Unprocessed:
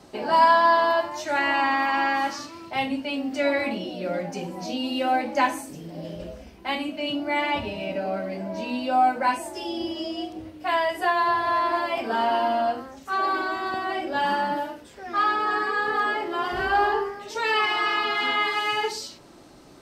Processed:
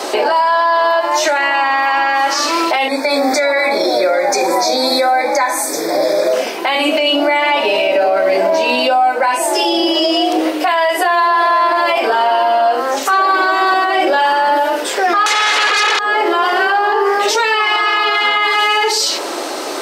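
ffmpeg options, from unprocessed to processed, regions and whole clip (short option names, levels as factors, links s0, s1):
-filter_complex "[0:a]asettb=1/sr,asplit=3[s0][s1][s2];[s0]atrim=end=2.884[s3];[s1]atrim=start=2.88:end=6.33,asetpts=PTS-STARTPTS,afade=t=in:d=0.004:c=qsin,afade=t=out:st=3.446:d=0.004:c=qsin,asuperstop=centerf=2900:order=12:qfactor=3,equalizer=f=190:w=0.38:g=-5.5[s4];[s2]atrim=start=6.326[s5];[s3][s4]acrossfade=d=0.004:c1=hsin:c2=qsin[s6];[s6][s5]acrossfade=d=0.004:c1=qsin:c2=hsin,asettb=1/sr,asplit=3[s7][s8][s9];[s7]atrim=end=15.264[s10];[s8]atrim=start=15.26:end=15.99,asetpts=PTS-STARTPTS,afade=t=in:d=0.004:c=qsin,afade=t=out:st=0.726:d=0.004:c=qsin,aeval=exprs='0.237*sin(PI/2*5.62*val(0)/0.237)':c=same,equalizer=f=1600:t=o:w=2.2:g=7.5[s11];[s9]atrim=start=15.986[s12];[s10][s11]acrossfade=d=0.004:c1=hsin:c2=qsin[s13];[s13][s12]acrossfade=d=0.004:c1=qsin:c2=hsin,highpass=f=380:w=0.5412,highpass=f=380:w=1.3066,acompressor=threshold=0.0158:ratio=12,alimiter=level_in=59.6:limit=0.891:release=50:level=0:latency=1,volume=0.562"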